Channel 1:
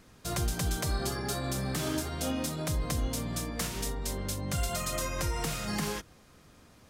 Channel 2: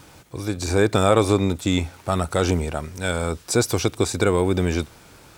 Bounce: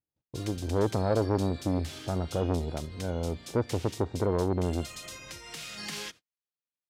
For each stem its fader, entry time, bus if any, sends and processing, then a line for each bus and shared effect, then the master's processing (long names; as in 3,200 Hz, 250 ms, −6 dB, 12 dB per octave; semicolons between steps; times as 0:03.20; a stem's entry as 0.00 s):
−7.5 dB, 0.10 s, no send, meter weighting curve D; automatic ducking −7 dB, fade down 0.25 s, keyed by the second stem
−4.0 dB, 0.00 s, no send, Bessel low-pass filter 540 Hz, order 2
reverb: not used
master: noise gate −48 dBFS, range −43 dB; saturating transformer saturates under 580 Hz